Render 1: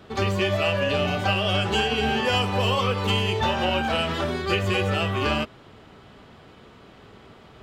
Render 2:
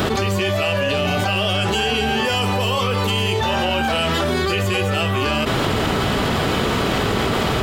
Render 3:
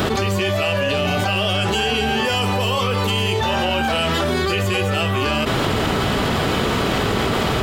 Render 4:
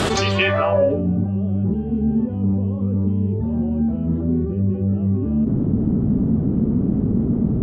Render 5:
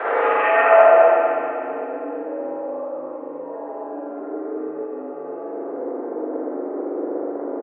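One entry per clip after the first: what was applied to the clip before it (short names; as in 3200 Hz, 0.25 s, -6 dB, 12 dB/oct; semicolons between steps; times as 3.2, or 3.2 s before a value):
high shelf 7800 Hz +11.5 dB; fast leveller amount 100%
nothing audible
low-pass sweep 9100 Hz -> 230 Hz, 0.07–1.08
echo 0.204 s -7 dB; spring tank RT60 2.9 s, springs 40/60 ms, chirp 20 ms, DRR -9 dB; mistuned SSB +64 Hz 420–2000 Hz; gain -2.5 dB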